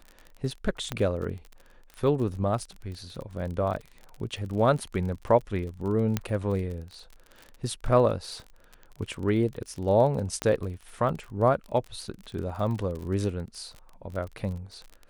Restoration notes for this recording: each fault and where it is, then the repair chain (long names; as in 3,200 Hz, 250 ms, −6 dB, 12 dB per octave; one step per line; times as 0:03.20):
surface crackle 36 per second −35 dBFS
0:00.92: click −15 dBFS
0:06.17: click −12 dBFS
0:10.42: click −14 dBFS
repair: click removal